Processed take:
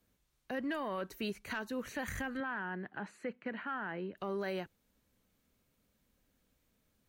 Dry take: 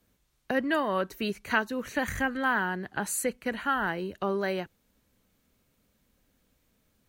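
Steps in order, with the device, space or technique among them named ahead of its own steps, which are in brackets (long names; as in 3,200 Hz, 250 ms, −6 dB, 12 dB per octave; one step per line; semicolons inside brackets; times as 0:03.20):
soft clipper into limiter (soft clipping −15 dBFS, distortion −22 dB; brickwall limiter −23.5 dBFS, peak gain reduction 8 dB)
0:02.40–0:04.17: Chebyshev band-pass filter 170–2,200 Hz, order 2
level −5.5 dB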